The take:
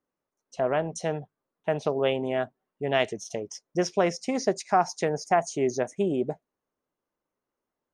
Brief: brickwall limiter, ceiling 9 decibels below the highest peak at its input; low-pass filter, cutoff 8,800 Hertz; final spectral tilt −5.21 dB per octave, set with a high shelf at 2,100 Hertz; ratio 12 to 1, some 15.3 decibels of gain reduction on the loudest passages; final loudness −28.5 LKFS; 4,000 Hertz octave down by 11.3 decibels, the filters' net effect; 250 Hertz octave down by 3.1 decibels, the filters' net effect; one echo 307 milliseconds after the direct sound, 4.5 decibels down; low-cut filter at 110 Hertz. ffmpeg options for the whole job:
ffmpeg -i in.wav -af "highpass=110,lowpass=8800,equalizer=frequency=250:width_type=o:gain=-4,highshelf=frequency=2100:gain=-8,equalizer=frequency=4000:width_type=o:gain=-8.5,acompressor=threshold=-34dB:ratio=12,alimiter=level_in=6dB:limit=-24dB:level=0:latency=1,volume=-6dB,aecho=1:1:307:0.596,volume=13.5dB" out.wav

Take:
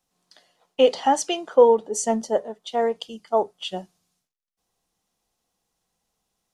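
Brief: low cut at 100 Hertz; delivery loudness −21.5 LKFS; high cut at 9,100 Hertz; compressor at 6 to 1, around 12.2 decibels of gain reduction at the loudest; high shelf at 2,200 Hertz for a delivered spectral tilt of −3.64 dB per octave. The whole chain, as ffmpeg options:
ffmpeg -i in.wav -af "highpass=100,lowpass=9100,highshelf=frequency=2200:gain=-7.5,acompressor=threshold=-23dB:ratio=6,volume=9dB" out.wav

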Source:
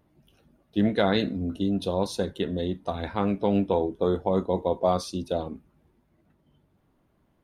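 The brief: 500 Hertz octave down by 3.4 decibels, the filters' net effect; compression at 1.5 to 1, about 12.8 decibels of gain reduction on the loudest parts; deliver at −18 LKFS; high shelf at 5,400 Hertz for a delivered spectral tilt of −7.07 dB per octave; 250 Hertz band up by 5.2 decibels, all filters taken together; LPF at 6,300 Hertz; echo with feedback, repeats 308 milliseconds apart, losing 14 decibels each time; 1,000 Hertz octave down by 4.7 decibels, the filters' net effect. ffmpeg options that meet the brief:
ffmpeg -i in.wav -af "lowpass=6300,equalizer=frequency=250:width_type=o:gain=8.5,equalizer=frequency=500:width_type=o:gain=-5.5,equalizer=frequency=1000:width_type=o:gain=-4.5,highshelf=frequency=5400:gain=-5.5,acompressor=threshold=-51dB:ratio=1.5,aecho=1:1:308|616:0.2|0.0399,volume=18dB" out.wav

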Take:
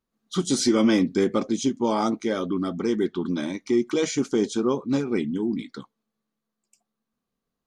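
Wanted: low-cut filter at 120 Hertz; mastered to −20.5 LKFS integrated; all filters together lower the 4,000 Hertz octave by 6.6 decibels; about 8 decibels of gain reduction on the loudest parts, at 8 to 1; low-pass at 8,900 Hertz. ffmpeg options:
ffmpeg -i in.wav -af "highpass=120,lowpass=8900,equalizer=frequency=4000:width_type=o:gain=-8.5,acompressor=threshold=-24dB:ratio=8,volume=9.5dB" out.wav

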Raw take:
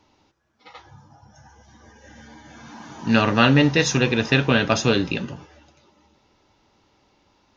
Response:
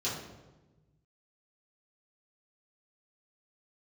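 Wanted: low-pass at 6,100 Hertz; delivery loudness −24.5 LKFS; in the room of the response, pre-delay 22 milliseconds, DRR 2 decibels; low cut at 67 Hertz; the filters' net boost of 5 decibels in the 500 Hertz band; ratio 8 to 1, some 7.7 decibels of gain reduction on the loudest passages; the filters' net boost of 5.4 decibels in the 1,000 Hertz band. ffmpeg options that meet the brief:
-filter_complex "[0:a]highpass=67,lowpass=6100,equalizer=frequency=500:width_type=o:gain=4.5,equalizer=frequency=1000:width_type=o:gain=6,acompressor=threshold=-17dB:ratio=8,asplit=2[link_01][link_02];[1:a]atrim=start_sample=2205,adelay=22[link_03];[link_02][link_03]afir=irnorm=-1:irlink=0,volume=-8dB[link_04];[link_01][link_04]amix=inputs=2:normalize=0,volume=-4.5dB"

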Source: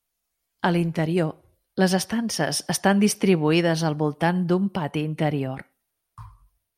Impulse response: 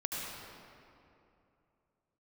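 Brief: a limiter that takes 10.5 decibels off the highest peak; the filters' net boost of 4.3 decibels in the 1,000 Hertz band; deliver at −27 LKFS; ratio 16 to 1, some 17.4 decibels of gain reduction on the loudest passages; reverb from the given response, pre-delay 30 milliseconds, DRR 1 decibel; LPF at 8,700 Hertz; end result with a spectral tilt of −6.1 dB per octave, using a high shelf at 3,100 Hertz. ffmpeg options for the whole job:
-filter_complex "[0:a]lowpass=8700,equalizer=frequency=1000:width_type=o:gain=6.5,highshelf=frequency=3100:gain=-8,acompressor=threshold=-31dB:ratio=16,alimiter=level_in=3.5dB:limit=-24dB:level=0:latency=1,volume=-3.5dB,asplit=2[link_01][link_02];[1:a]atrim=start_sample=2205,adelay=30[link_03];[link_02][link_03]afir=irnorm=-1:irlink=0,volume=-5dB[link_04];[link_01][link_04]amix=inputs=2:normalize=0,volume=9dB"

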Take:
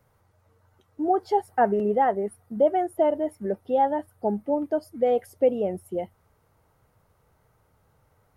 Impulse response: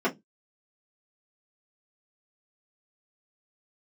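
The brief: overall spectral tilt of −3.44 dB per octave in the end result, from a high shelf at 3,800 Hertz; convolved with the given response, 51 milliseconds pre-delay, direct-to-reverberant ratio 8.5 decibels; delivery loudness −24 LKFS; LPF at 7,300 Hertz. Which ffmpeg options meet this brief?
-filter_complex "[0:a]lowpass=7300,highshelf=frequency=3800:gain=-6.5,asplit=2[link_01][link_02];[1:a]atrim=start_sample=2205,adelay=51[link_03];[link_02][link_03]afir=irnorm=-1:irlink=0,volume=-21dB[link_04];[link_01][link_04]amix=inputs=2:normalize=0,volume=0.5dB"

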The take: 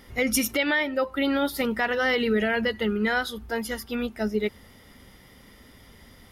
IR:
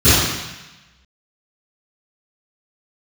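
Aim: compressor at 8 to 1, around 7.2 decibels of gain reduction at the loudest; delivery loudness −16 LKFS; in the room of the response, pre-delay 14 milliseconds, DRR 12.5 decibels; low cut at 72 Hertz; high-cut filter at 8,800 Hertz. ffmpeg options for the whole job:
-filter_complex "[0:a]highpass=72,lowpass=8800,acompressor=threshold=-27dB:ratio=8,asplit=2[link_01][link_02];[1:a]atrim=start_sample=2205,adelay=14[link_03];[link_02][link_03]afir=irnorm=-1:irlink=0,volume=-39dB[link_04];[link_01][link_04]amix=inputs=2:normalize=0,volume=15dB"

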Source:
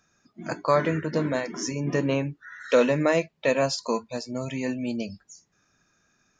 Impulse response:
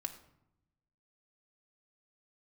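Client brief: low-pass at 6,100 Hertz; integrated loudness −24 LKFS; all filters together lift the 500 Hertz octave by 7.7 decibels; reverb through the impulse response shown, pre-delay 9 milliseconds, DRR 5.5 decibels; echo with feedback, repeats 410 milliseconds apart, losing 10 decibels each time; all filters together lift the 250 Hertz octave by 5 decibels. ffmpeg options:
-filter_complex "[0:a]lowpass=6100,equalizer=frequency=250:width_type=o:gain=3.5,equalizer=frequency=500:width_type=o:gain=8,aecho=1:1:410|820|1230|1640:0.316|0.101|0.0324|0.0104,asplit=2[link_01][link_02];[1:a]atrim=start_sample=2205,adelay=9[link_03];[link_02][link_03]afir=irnorm=-1:irlink=0,volume=-4.5dB[link_04];[link_01][link_04]amix=inputs=2:normalize=0,volume=-5dB"

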